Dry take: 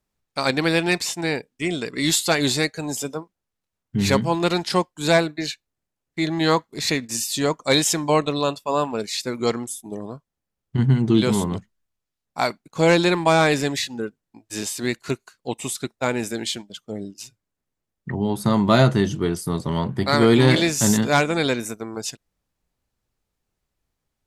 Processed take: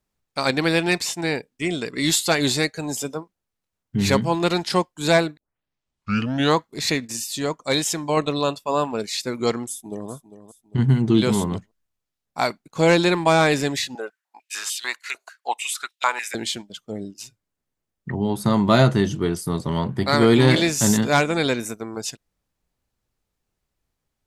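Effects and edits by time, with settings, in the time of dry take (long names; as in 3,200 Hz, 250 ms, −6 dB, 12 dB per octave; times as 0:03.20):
0:05.37: tape start 1.19 s
0:07.12–0:08.17: clip gain −3.5 dB
0:09.68–0:10.11: delay throw 400 ms, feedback 40%, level −13.5 dB
0:13.95–0:16.35: high-pass on a step sequencer 6.7 Hz 660–3,100 Hz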